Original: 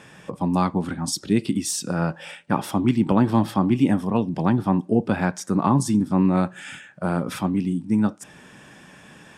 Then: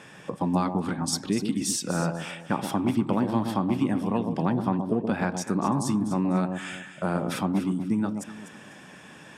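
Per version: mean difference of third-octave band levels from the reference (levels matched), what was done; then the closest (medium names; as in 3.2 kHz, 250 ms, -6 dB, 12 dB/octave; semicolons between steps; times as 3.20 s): 5.0 dB: high-pass 130 Hz 6 dB/octave; treble shelf 11 kHz -3 dB; compression 3:1, threshold -23 dBFS, peak gain reduction 7.5 dB; on a send: echo whose repeats swap between lows and highs 124 ms, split 920 Hz, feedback 52%, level -6 dB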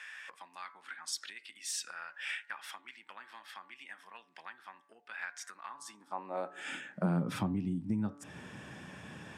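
11.5 dB: treble shelf 5.8 kHz -7 dB; de-hum 143.6 Hz, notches 15; compression 6:1, threshold -31 dBFS, peak gain reduction 16.5 dB; high-pass sweep 1.8 kHz -> 85 Hz, 5.65–7.57 s; trim -2 dB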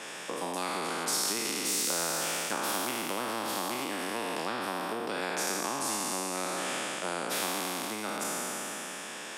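18.5 dB: spectral sustain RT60 2.39 s; compression, threshold -18 dBFS, peak gain reduction 8 dB; ladder high-pass 300 Hz, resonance 25%; spectrum-flattening compressor 2:1; trim +2 dB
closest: first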